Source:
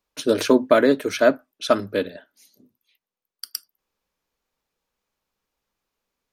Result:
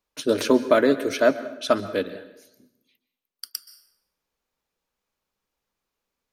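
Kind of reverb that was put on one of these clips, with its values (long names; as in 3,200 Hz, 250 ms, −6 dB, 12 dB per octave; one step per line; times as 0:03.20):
dense smooth reverb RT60 0.83 s, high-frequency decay 0.8×, pre-delay 115 ms, DRR 14 dB
level −2 dB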